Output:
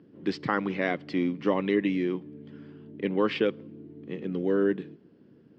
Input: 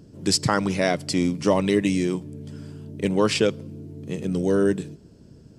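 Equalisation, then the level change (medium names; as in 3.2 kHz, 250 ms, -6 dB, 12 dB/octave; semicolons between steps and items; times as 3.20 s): cabinet simulation 280–2800 Hz, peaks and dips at 430 Hz -3 dB, 630 Hz -10 dB, 920 Hz -6 dB, 1.4 kHz -4 dB, 2.5 kHz -5 dB; 0.0 dB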